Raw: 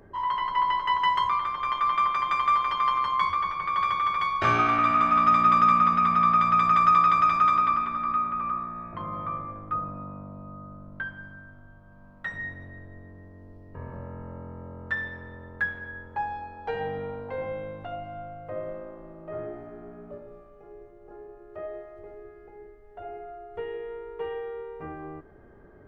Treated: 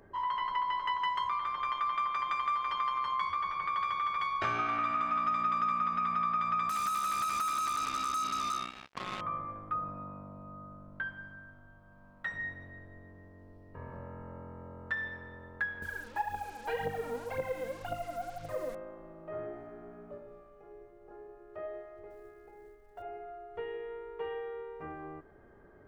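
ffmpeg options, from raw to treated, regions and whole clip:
-filter_complex "[0:a]asettb=1/sr,asplit=3[a][b][c];[a]atrim=end=6.694[d];[b]atrim=start=6.69:end=9.21,asetpts=PTS-STARTPTS,afade=t=in:d=0.004:c=qsin,afade=t=out:st=2.516:d=0.004:c=qsin,afreqshift=28,acompressor=threshold=-25dB:ratio=2.5:attack=3.2:release=140:knee=1:detection=peak,acrusher=bits=4:mix=0:aa=0.5[e];[c]atrim=start=9.206[f];[d][e]acrossfade=d=0.004:c1=hsin:c2=qsin[g];[g][f]acrossfade=d=0.004:c1=qsin:c2=hsin,asettb=1/sr,asplit=3[h][i][j];[h]atrim=end=15.824[k];[i]atrim=start=15.82:end=18.75,asetpts=PTS-STARTPTS,afade=t=in:d=0.004:c=qsin,afade=t=out:st=2.926:d=0.004:c=qsin,aphaser=in_gain=1:out_gain=1:delay=4.5:decay=0.69:speed=1.9:type=triangular,acrusher=bits=7:mix=0:aa=0.5[l];[j]atrim=start=18.746[m];[k][l]acrossfade=d=0.004:c1=hsin:c2=qsin[n];[n][m]acrossfade=d=0.004:c1=qsin:c2=hsin,asettb=1/sr,asplit=3[o][p][q];[o]atrim=end=22.104[r];[p]atrim=start=22.1:end=23.02,asetpts=PTS-STARTPTS,afade=t=in:d=0.004:c=qsin,afade=t=out:st=0.916:d=0.004:c=qsin,bandreject=f=60:t=h:w=6,bandreject=f=120:t=h:w=6,bandreject=f=180:t=h:w=6,bandreject=f=240:t=h:w=6,bandreject=f=300:t=h:w=6,bandreject=f=360:t=h:w=6,bandreject=f=420:t=h:w=6,bandreject=f=480:t=h:w=6,acrusher=bits=8:mode=log:mix=0:aa=0.000001[s];[q]atrim=start=23.016[t];[r][s]acrossfade=d=0.004:c1=hsin:c2=qsin[u];[u][t]acrossfade=d=0.004:c1=qsin:c2=hsin,lowshelf=f=430:g=-5,acompressor=threshold=-28dB:ratio=3,volume=-2.5dB"

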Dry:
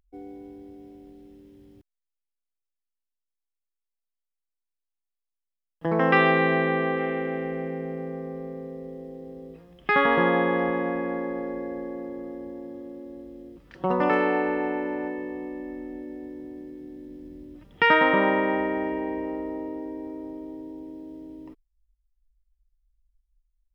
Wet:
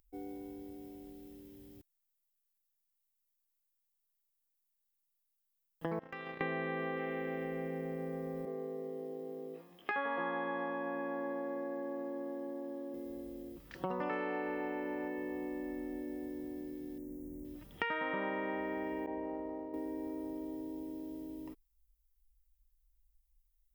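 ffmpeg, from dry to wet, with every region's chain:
-filter_complex "[0:a]asettb=1/sr,asplit=3[a][b][c];[a]atrim=end=5.994[d];[b]atrim=start=5.99:end=6.41,asetpts=PTS-STARTPTS,afade=t=in:d=0.004:c=qsin,afade=t=out:st=0.416:d=0.004:c=qsin,agate=range=-29dB:threshold=-18dB:ratio=16:release=100:detection=peak,acompressor=threshold=-35dB:ratio=16:attack=3.2:release=140:knee=1:detection=peak[e];[c]atrim=start=6.406[f];[d][e]acrossfade=d=0.004:c1=hsin:c2=qsin[g];[g][f]acrossfade=d=0.004:c1=qsin:c2=hsin,asettb=1/sr,asplit=3[h][i][j];[h]atrim=end=8.454[k];[i]atrim=start=8.45:end=12.94,asetpts=PTS-STARTPTS,afade=t=in:d=0.004:c=qsin,afade=t=out:st=4.486:d=0.004:c=qsin,highpass=320,highshelf=f=2.9k:g=-8.5,asplit=2[l][m];[m]adelay=18,volume=-2.5dB[n];[l][n]amix=inputs=2:normalize=0,atrim=end_sample=198009[o];[j]atrim=start=12.936[p];[k][o]acrossfade=d=0.004:c1=hsin:c2=qsin[q];[q][p]acrossfade=d=0.004:c1=qsin:c2=hsin,asettb=1/sr,asplit=3[r][s][t];[r]atrim=end=16.984[u];[s]atrim=start=16.98:end=17.45,asetpts=PTS-STARTPTS,afade=t=in:d=0.004:c=qsin,afade=t=out:st=0.466:d=0.004:c=qsin,asuperstop=centerf=3600:order=12:qfactor=1,equalizer=f=1.6k:t=o:w=0.97:g=-12.5[v];[t]atrim=start=17.446[w];[u][v]acrossfade=d=0.004:c1=hsin:c2=qsin[x];[x][w]acrossfade=d=0.004:c1=qsin:c2=hsin,asettb=1/sr,asplit=3[y][z][aa];[y]atrim=end=19.064[ab];[z]atrim=start=19.06:end=19.74,asetpts=PTS-STARTPTS,afade=t=in:d=0.004:c=qsin,afade=t=out:st=0.676:d=0.004:c=qsin,agate=range=-33dB:threshold=-27dB:ratio=3:release=100:detection=peak,lowpass=f=1.9k:p=1,equalizer=f=750:w=1.8:g=7[ac];[aa]atrim=start=19.736[ad];[ab][ac]acrossfade=d=0.004:c1=hsin:c2=qsin[ae];[ae][ad]acrossfade=d=0.004:c1=qsin:c2=hsin,acrossover=split=3600[af][ag];[ag]acompressor=threshold=-56dB:ratio=4:attack=1:release=60[ah];[af][ah]amix=inputs=2:normalize=0,aemphasis=mode=production:type=50fm,acompressor=threshold=-33dB:ratio=4,volume=-3dB"

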